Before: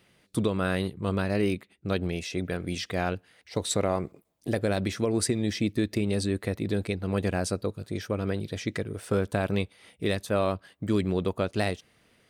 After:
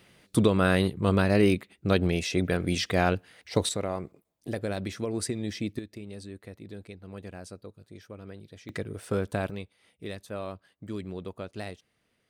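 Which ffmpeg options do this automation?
-af "asetnsamples=n=441:p=0,asendcmd='3.69 volume volume -5dB;5.79 volume volume -14.5dB;8.69 volume volume -2.5dB;9.5 volume volume -10.5dB',volume=4.5dB"

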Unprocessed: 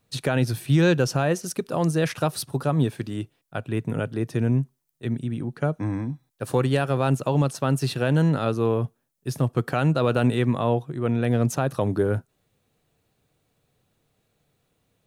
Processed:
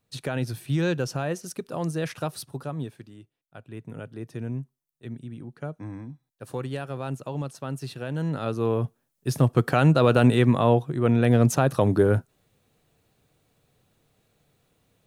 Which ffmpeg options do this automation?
-af "volume=15dB,afade=t=out:st=2.27:d=0.93:silence=0.251189,afade=t=in:st=3.2:d=1.06:silence=0.398107,afade=t=in:st=8.14:d=1.26:silence=0.223872"

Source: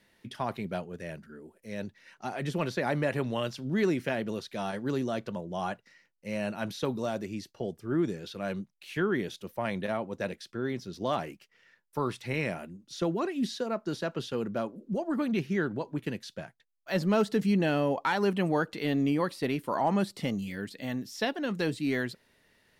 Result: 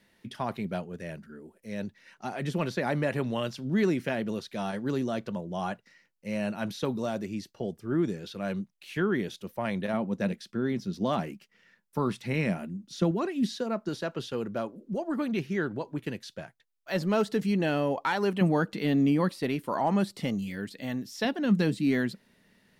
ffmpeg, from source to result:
-af "asetnsamples=n=441:p=0,asendcmd='9.93 equalizer g 11.5;13.11 equalizer g 4.5;13.89 equalizer g -1.5;18.41 equalizer g 10.5;19.3 equalizer g 2;21.25 equalizer g 12.5',equalizer=f=200:t=o:w=0.69:g=3.5"

